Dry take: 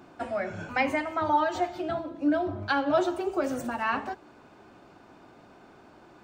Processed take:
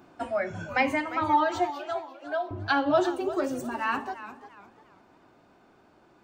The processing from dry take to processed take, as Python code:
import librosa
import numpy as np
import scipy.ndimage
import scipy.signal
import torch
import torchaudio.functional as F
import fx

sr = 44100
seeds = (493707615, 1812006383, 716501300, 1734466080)

y = fx.noise_reduce_blind(x, sr, reduce_db=7)
y = fx.highpass(y, sr, hz=540.0, slope=24, at=(1.7, 2.51))
y = fx.rider(y, sr, range_db=10, speed_s=2.0)
y = fx.echo_warbled(y, sr, ms=348, feedback_pct=32, rate_hz=2.8, cents=132, wet_db=-14.0)